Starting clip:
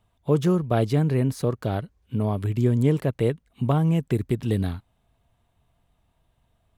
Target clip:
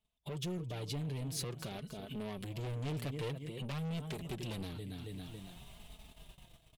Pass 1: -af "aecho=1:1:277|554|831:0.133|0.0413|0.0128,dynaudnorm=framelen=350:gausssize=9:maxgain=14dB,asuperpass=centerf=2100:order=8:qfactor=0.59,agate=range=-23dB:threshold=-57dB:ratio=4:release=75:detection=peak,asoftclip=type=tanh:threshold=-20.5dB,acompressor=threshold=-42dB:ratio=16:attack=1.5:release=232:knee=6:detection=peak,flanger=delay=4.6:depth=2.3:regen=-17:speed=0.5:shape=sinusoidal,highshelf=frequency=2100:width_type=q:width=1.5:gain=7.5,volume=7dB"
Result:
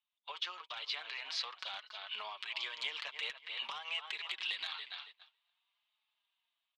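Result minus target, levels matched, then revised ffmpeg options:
2,000 Hz band +9.0 dB
-af "aecho=1:1:277|554|831:0.133|0.0413|0.0128,dynaudnorm=framelen=350:gausssize=9:maxgain=14dB,agate=range=-23dB:threshold=-57dB:ratio=4:release=75:detection=peak,asoftclip=type=tanh:threshold=-20.5dB,acompressor=threshold=-42dB:ratio=16:attack=1.5:release=232:knee=6:detection=peak,flanger=delay=4.6:depth=2.3:regen=-17:speed=0.5:shape=sinusoidal,highshelf=frequency=2100:width_type=q:width=1.5:gain=7.5,volume=7dB"

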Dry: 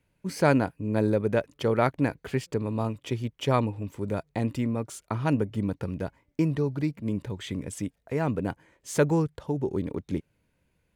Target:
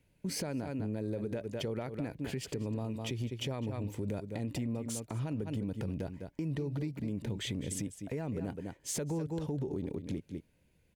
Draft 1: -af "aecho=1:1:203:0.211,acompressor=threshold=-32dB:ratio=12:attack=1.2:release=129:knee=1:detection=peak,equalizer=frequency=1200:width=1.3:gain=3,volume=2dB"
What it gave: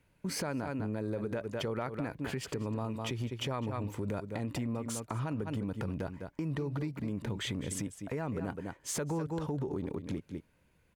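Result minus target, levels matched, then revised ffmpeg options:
1,000 Hz band +6.0 dB
-af "aecho=1:1:203:0.211,acompressor=threshold=-32dB:ratio=12:attack=1.2:release=129:knee=1:detection=peak,equalizer=frequency=1200:width=1.3:gain=-8,volume=2dB"

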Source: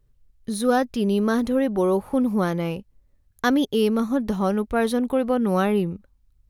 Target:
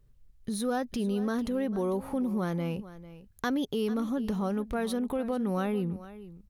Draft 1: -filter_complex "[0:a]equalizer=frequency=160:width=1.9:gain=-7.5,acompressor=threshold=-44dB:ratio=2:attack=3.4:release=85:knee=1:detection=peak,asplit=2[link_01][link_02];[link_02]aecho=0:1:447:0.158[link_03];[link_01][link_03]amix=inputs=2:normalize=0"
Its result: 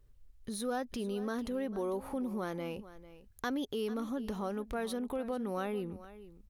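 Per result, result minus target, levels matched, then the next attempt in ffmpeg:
125 Hz band −4.5 dB; downward compressor: peak gain reduction +4 dB
-filter_complex "[0:a]equalizer=frequency=160:width=1.9:gain=3.5,acompressor=threshold=-44dB:ratio=2:attack=3.4:release=85:knee=1:detection=peak,asplit=2[link_01][link_02];[link_02]aecho=0:1:447:0.158[link_03];[link_01][link_03]amix=inputs=2:normalize=0"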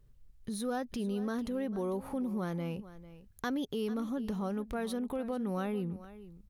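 downward compressor: peak gain reduction +4.5 dB
-filter_complex "[0:a]equalizer=frequency=160:width=1.9:gain=3.5,acompressor=threshold=-34.5dB:ratio=2:attack=3.4:release=85:knee=1:detection=peak,asplit=2[link_01][link_02];[link_02]aecho=0:1:447:0.158[link_03];[link_01][link_03]amix=inputs=2:normalize=0"

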